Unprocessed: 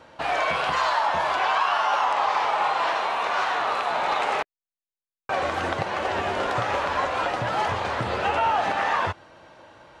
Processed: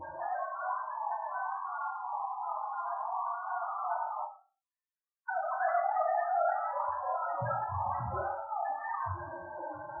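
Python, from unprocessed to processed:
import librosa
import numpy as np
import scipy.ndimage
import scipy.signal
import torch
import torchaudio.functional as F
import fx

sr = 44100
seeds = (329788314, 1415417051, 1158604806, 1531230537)

y = fx.sine_speech(x, sr, at=(4.38, 6.62))
y = fx.peak_eq(y, sr, hz=480.0, db=-7.5, octaves=0.36)
y = fx.over_compress(y, sr, threshold_db=-35.0, ratio=-1.0)
y = np.clip(10.0 ** (27.0 / 20.0) * y, -1.0, 1.0) / 10.0 ** (27.0 / 20.0)
y = fx.vibrato(y, sr, rate_hz=0.8, depth_cents=31.0)
y = y * (1.0 - 0.41 / 2.0 + 0.41 / 2.0 * np.cos(2.0 * np.pi * 2.8 * (np.arange(len(y)) / sr)))
y = fx.quant_float(y, sr, bits=2)
y = fx.spec_topn(y, sr, count=8)
y = fx.brickwall_lowpass(y, sr, high_hz=2000.0)
y = fx.doubler(y, sr, ms=23.0, db=-6.5)
y = fx.echo_multitap(y, sr, ms=(43, 80, 105, 165), db=(-6.0, -12.0, -10.0, -14.5))
y = fx.end_taper(y, sr, db_per_s=160.0)
y = y * 10.0 ** (3.5 / 20.0)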